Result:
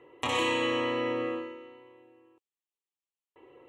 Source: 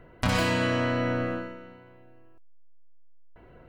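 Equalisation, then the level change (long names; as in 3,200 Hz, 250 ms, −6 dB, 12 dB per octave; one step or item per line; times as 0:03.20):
loudspeaker in its box 310–9,400 Hz, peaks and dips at 480 Hz −3 dB, 1,000 Hz −5 dB, 1,500 Hz −5 dB, 2,200 Hz −8 dB, 9,200 Hz −8 dB
phaser with its sweep stopped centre 1,000 Hz, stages 8
+5.5 dB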